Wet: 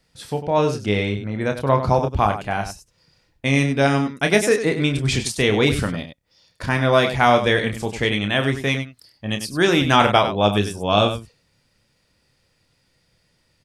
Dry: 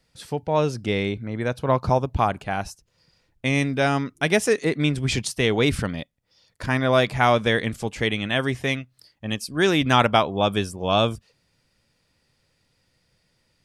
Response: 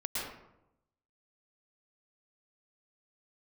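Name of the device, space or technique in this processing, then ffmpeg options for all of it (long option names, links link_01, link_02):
slapback doubling: -filter_complex "[0:a]asplit=3[link_01][link_02][link_03];[link_02]adelay=29,volume=-7dB[link_04];[link_03]adelay=98,volume=-10dB[link_05];[link_01][link_04][link_05]amix=inputs=3:normalize=0,volume=2dB"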